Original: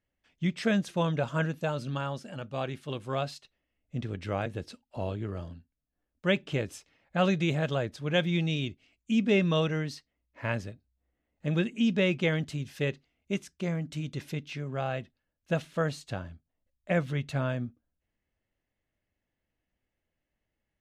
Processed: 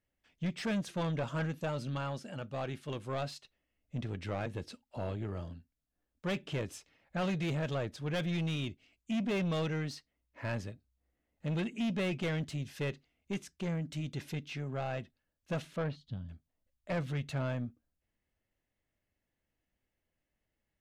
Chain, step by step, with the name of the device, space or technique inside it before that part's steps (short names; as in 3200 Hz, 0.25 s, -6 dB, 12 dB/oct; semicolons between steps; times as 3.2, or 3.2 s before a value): 15.96–16.3 spectral gain 260–2900 Hz -18 dB; 15.76–16.29 air absorption 330 m; saturation between pre-emphasis and de-emphasis (high shelf 3900 Hz +11.5 dB; soft clip -27.5 dBFS, distortion -9 dB; high shelf 3900 Hz -11.5 dB); gain -1.5 dB